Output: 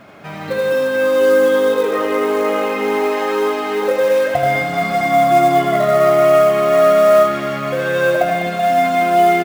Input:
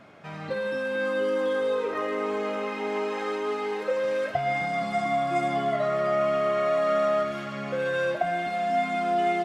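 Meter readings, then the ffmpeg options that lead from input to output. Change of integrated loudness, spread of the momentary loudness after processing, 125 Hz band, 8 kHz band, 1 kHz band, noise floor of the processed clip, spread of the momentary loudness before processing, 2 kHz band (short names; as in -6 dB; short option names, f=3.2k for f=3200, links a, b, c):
+12.0 dB, 7 LU, +11.5 dB, n/a, +11.5 dB, -28 dBFS, 6 LU, +10.5 dB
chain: -af "aecho=1:1:80|200|380|650|1055:0.631|0.398|0.251|0.158|0.1,acrusher=bits=6:mode=log:mix=0:aa=0.000001,volume=8.5dB"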